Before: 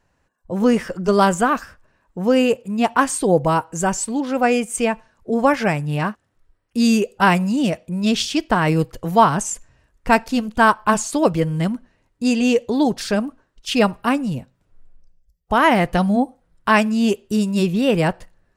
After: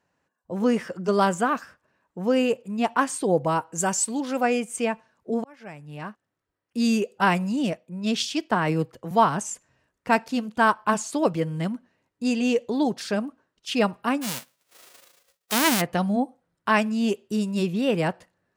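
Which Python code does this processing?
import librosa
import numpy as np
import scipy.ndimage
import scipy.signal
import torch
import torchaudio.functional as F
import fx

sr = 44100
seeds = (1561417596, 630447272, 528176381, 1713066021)

y = fx.high_shelf(x, sr, hz=3900.0, db=10.0, at=(3.78, 4.43))
y = fx.band_widen(y, sr, depth_pct=40, at=(7.73, 9.11))
y = fx.envelope_flatten(y, sr, power=0.1, at=(14.21, 15.8), fade=0.02)
y = fx.edit(y, sr, fx.fade_in_span(start_s=5.44, length_s=1.43), tone=tone)
y = scipy.signal.sosfilt(scipy.signal.butter(2, 140.0, 'highpass', fs=sr, output='sos'), y)
y = fx.high_shelf(y, sr, hz=9000.0, db=-4.5)
y = y * librosa.db_to_amplitude(-5.5)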